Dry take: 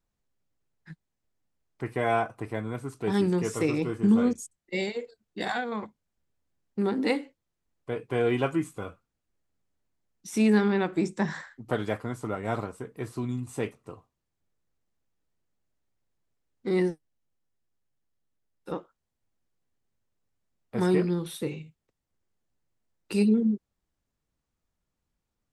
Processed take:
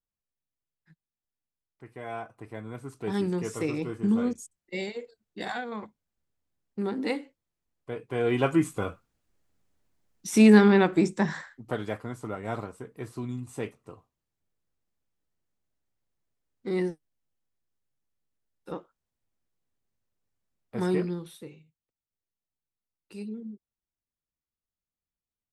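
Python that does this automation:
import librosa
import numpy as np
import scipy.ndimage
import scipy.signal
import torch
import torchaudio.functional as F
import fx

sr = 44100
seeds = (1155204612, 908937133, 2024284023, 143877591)

y = fx.gain(x, sr, db=fx.line((1.84, -14.5), (2.93, -3.5), (8.11, -3.5), (8.66, 6.0), (10.78, 6.0), (11.75, -3.0), (21.03, -3.0), (21.6, -15.5)))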